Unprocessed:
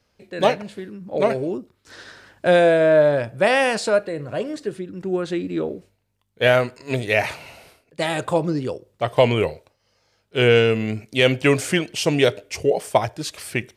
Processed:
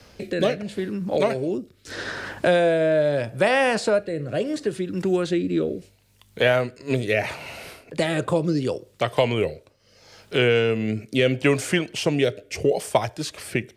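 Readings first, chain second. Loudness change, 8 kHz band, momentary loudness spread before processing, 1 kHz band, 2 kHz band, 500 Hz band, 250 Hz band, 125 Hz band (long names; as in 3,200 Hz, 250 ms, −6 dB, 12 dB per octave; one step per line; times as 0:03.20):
−2.5 dB, −2.5 dB, 14 LU, −3.5 dB, −2.5 dB, −2.5 dB, 0.0 dB, −1.5 dB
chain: rotating-speaker cabinet horn 0.75 Hz
multiband upward and downward compressor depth 70%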